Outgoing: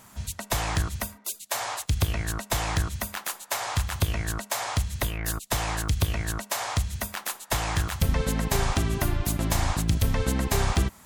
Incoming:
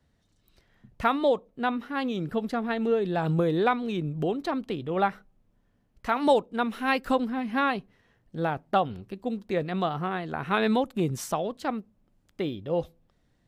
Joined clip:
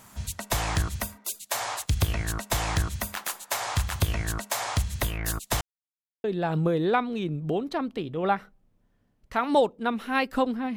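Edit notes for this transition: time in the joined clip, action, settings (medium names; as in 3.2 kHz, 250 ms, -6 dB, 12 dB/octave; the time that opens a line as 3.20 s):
outgoing
5.61–6.24 s: mute
6.24 s: go over to incoming from 2.97 s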